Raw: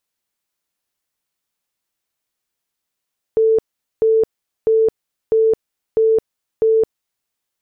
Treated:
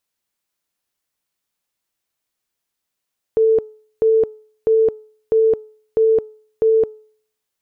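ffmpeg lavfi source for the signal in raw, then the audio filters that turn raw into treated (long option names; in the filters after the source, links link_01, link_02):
-f lavfi -i "aevalsrc='0.299*sin(2*PI*444*mod(t,0.65))*lt(mod(t,0.65),96/444)':duration=3.9:sample_rate=44100"
-af "bandreject=frequency=431.3:width_type=h:width=4,bandreject=frequency=862.6:width_type=h:width=4,bandreject=frequency=1293.9:width_type=h:width=4"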